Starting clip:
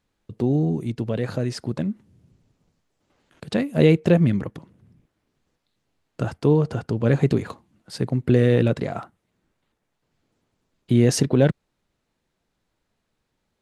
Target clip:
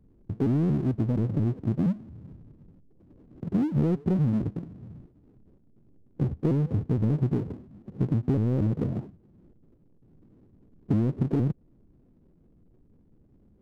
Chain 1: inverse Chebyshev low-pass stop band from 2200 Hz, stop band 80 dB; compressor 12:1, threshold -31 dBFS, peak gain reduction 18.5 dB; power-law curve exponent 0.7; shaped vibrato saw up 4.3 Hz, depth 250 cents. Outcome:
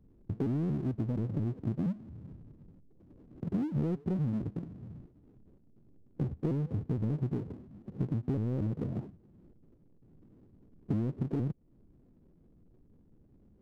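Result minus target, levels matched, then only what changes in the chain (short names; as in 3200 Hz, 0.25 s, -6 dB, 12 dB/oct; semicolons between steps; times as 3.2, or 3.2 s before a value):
compressor: peak gain reduction +7.5 dB
change: compressor 12:1, threshold -23 dBFS, peak gain reduction 11 dB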